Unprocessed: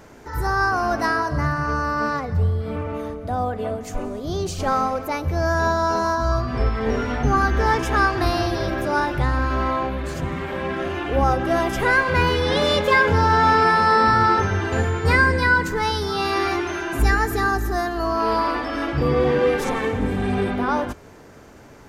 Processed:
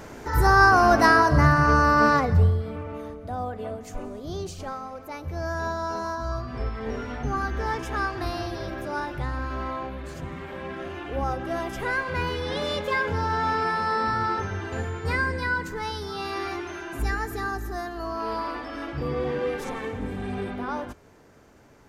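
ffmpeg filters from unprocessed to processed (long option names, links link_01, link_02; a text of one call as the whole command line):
ffmpeg -i in.wav -af "volume=11.5dB,afade=type=out:start_time=2.23:duration=0.49:silence=0.266073,afade=type=out:start_time=4.39:duration=0.41:silence=0.354813,afade=type=in:start_time=4.8:duration=0.57:silence=0.446684" out.wav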